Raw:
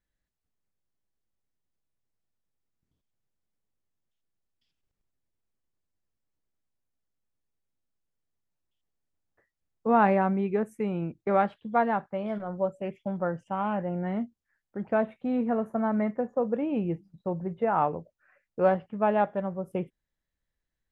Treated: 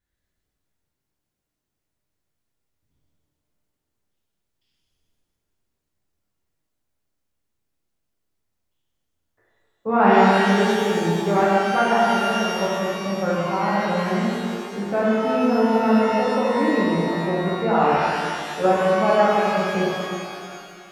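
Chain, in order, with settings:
reverb with rising layers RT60 2.2 s, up +12 semitones, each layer −8 dB, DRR −7.5 dB

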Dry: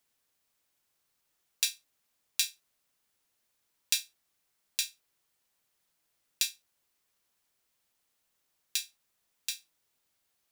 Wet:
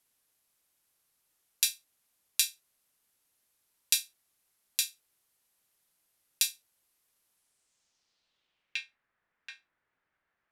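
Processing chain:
low-pass filter sweep 12,000 Hz → 1,700 Hz, 0:07.32–0:09.06

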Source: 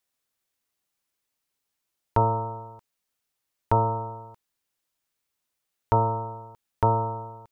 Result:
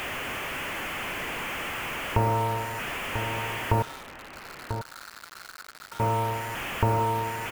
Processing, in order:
linear delta modulator 16 kbit/s, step −34 dBFS
downward compressor 5 to 1, threshold −28 dBFS, peak gain reduction 8.5 dB
0:03.82–0:06.00: resonant band-pass 1,400 Hz, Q 11
bit-depth reduction 8 bits, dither none
slap from a distant wall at 170 metres, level −8 dB
level +7.5 dB

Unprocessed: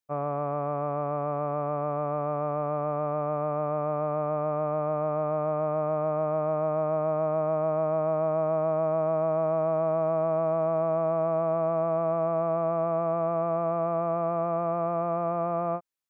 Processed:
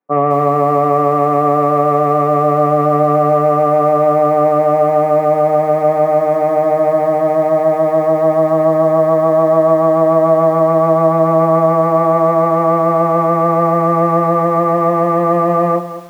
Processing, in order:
parametric band 160 Hz +2.5 dB 2.9 octaves
in parallel at −11 dB: wrap-around overflow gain 19.5 dB
on the sum: loudspeaker in its box 110–2,300 Hz, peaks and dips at 130 Hz −8 dB, 210 Hz −6 dB, 320 Hz +5 dB, 500 Hz +4 dB, 790 Hz +6 dB, 1,200 Hz +6 dB
convolution reverb, pre-delay 3 ms, DRR −2.5 dB
feedback echo at a low word length 209 ms, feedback 35%, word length 5 bits, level −12 dB
level −5 dB

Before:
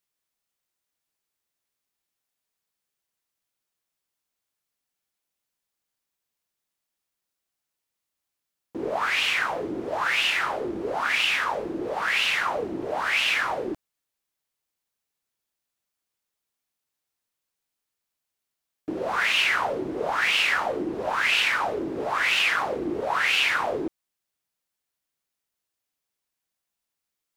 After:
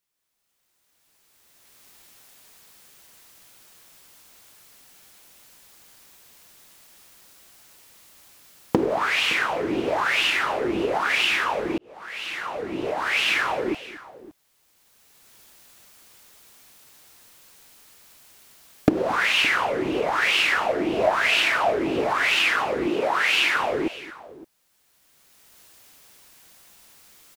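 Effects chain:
camcorder AGC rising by 16 dB per second
0:20.69–0:21.78: parametric band 660 Hz +11 dB 0.23 octaves
0:22.87–0:23.56: high-pass filter 170 Hz 12 dB per octave
multi-tap delay 226/565 ms −19.5/−18.5 dB
0:11.78–0:13.33: fade in
level +1.5 dB

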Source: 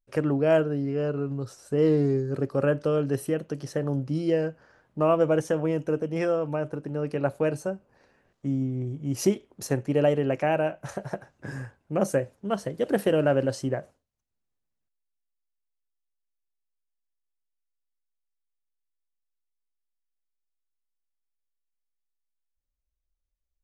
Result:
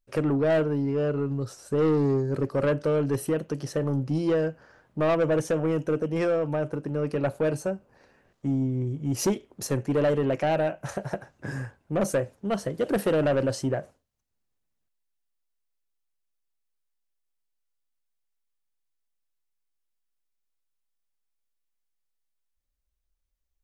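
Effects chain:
soft clipping −21 dBFS, distortion −12 dB
level +3 dB

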